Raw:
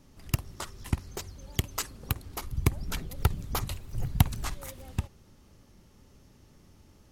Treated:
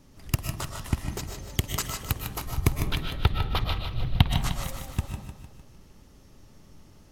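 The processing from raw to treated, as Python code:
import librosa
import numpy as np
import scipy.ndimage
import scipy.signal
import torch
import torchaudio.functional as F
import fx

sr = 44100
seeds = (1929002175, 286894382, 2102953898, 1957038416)

p1 = fx.high_shelf_res(x, sr, hz=5100.0, db=-13.0, q=3.0, at=(2.82, 4.31))
p2 = p1 + fx.echo_feedback(p1, sr, ms=152, feedback_pct=53, wet_db=-8, dry=0)
p3 = fx.rev_freeverb(p2, sr, rt60_s=0.48, hf_ratio=0.45, predelay_ms=85, drr_db=5.0)
y = p3 * 10.0 ** (2.0 / 20.0)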